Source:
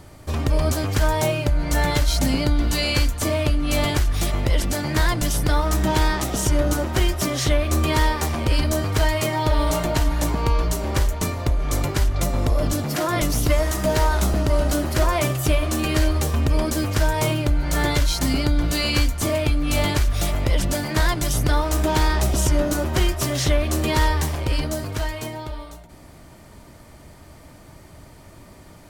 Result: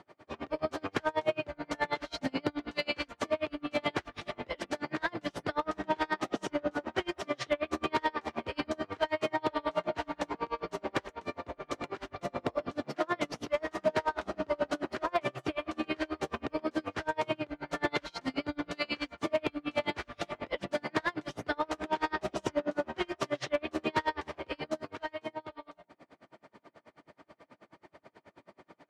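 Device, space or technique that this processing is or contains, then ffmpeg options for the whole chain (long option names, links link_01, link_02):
helicopter radio: -af "highpass=300,lowpass=2800,aeval=exprs='val(0)*pow(10,-34*(0.5-0.5*cos(2*PI*9.3*n/s))/20)':channel_layout=same,asoftclip=type=hard:threshold=-18.5dB,volume=-1dB"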